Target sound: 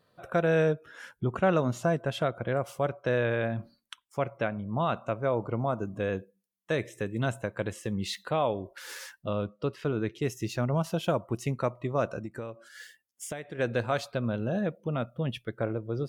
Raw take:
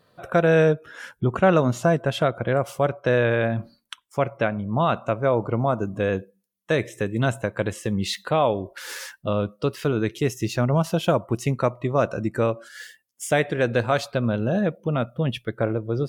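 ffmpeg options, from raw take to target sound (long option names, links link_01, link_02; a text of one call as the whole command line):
ffmpeg -i in.wav -filter_complex "[0:a]asettb=1/sr,asplit=3[link_01][link_02][link_03];[link_01]atrim=end=9.454[link_04];[link_02]atrim=start=9.45:end=10.22,asetpts=PTS-STARTPTS,afade=type=in:duration=0.004:curve=qsin,afade=type=out:start_time=0.766:duration=0.004:curve=qsin,aemphasis=mode=reproduction:type=50fm[link_05];[link_03]atrim=start=10.216[link_06];[link_04][link_05]acrossfade=duration=0.004:curve1=hsin:curve2=qsin[link_07];[link_07][link_06]acrossfade=duration=0.004:curve1=qsin:curve2=hsin,asplit=3[link_08][link_09][link_10];[link_08]afade=type=out:start_time=12.18:duration=0.02[link_11];[link_09]acompressor=threshold=-27dB:ratio=16,afade=type=in:start_time=12.18:duration=0.02,afade=type=out:start_time=13.58:duration=0.02[link_12];[link_10]afade=type=in:start_time=13.58:duration=0.02[link_13];[link_11][link_12][link_13]amix=inputs=3:normalize=0,volume=-7dB" out.wav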